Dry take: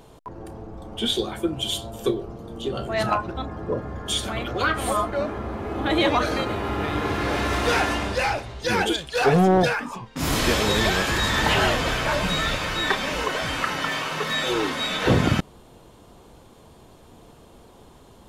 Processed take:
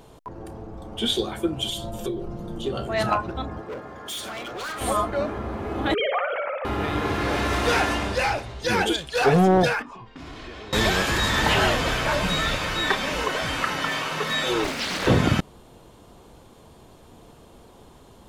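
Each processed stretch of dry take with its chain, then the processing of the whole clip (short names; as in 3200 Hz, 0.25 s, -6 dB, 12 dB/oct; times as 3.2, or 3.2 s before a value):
1.69–2.66 low shelf 160 Hz +7.5 dB + comb 5.7 ms, depth 58% + compressor 3:1, threshold -27 dBFS
3.61–4.81 HPF 490 Hz 6 dB/oct + overloaded stage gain 30.5 dB
5.94–6.65 sine-wave speech + compressor 2.5:1, threshold -24 dBFS + flutter echo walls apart 10.1 m, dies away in 0.51 s
9.82–10.73 compressor, threshold -37 dBFS + LPF 4000 Hz + comb 2.8 ms, depth 36%
14.64–15.07 minimum comb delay 0.52 ms + doubler 22 ms -7.5 dB + Doppler distortion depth 0.84 ms
whole clip: dry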